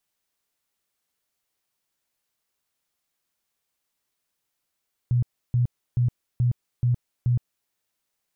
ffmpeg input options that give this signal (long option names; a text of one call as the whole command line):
ffmpeg -f lavfi -i "aevalsrc='0.133*sin(2*PI*122*mod(t,0.43))*lt(mod(t,0.43),14/122)':duration=2.58:sample_rate=44100" out.wav